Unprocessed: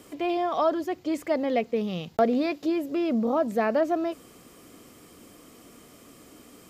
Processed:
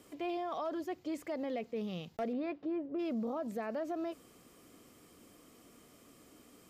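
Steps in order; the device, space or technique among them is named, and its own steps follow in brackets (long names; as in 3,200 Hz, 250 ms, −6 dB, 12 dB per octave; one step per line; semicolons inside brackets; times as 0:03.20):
0:02.32–0:02.98: low-pass filter 2,800 Hz → 1,100 Hz 12 dB per octave
clipper into limiter (hard clipping −15 dBFS, distortion −27 dB; brickwall limiter −21 dBFS, peak gain reduction 6 dB)
level −9 dB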